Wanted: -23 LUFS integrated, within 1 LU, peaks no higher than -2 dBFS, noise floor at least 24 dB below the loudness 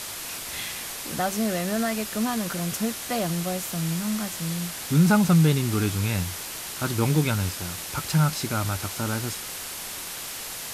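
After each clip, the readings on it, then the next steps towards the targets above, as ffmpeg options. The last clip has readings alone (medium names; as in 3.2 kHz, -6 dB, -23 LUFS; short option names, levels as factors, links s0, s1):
noise floor -36 dBFS; noise floor target -50 dBFS; loudness -26.0 LUFS; peak level -8.5 dBFS; loudness target -23.0 LUFS
-> -af "afftdn=nr=14:nf=-36"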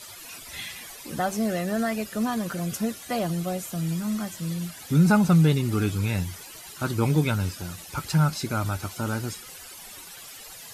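noise floor -43 dBFS; noise floor target -50 dBFS
-> -af "afftdn=nr=7:nf=-43"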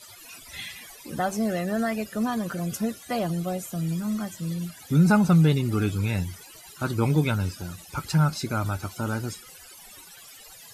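noise floor -47 dBFS; noise floor target -50 dBFS
-> -af "afftdn=nr=6:nf=-47"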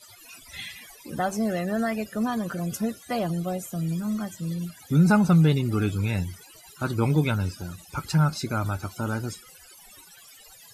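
noise floor -50 dBFS; loudness -26.0 LUFS; peak level -9.5 dBFS; loudness target -23.0 LUFS
-> -af "volume=1.41"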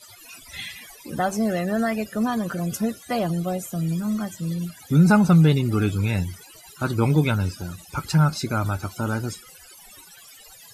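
loudness -23.0 LUFS; peak level -6.5 dBFS; noise floor -47 dBFS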